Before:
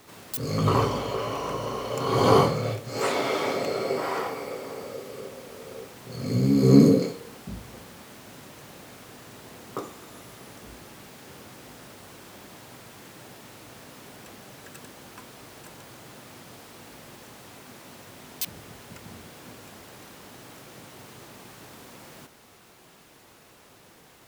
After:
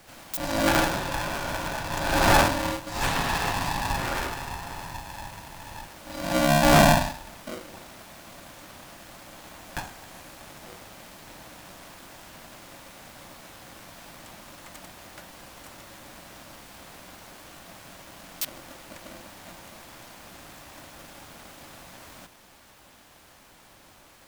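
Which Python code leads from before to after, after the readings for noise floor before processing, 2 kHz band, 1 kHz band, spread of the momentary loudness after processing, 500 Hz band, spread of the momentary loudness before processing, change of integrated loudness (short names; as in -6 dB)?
-54 dBFS, +9.5 dB, +4.0 dB, 25 LU, -2.5 dB, 25 LU, 0.0 dB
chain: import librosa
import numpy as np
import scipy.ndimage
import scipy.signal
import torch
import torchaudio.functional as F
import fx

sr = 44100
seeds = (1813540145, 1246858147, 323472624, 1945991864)

y = 10.0 ** (-9.5 / 20.0) * (np.abs((x / 10.0 ** (-9.5 / 20.0) + 3.0) % 4.0 - 2.0) - 1.0)
y = y * np.sign(np.sin(2.0 * np.pi * 430.0 * np.arange(len(y)) / sr))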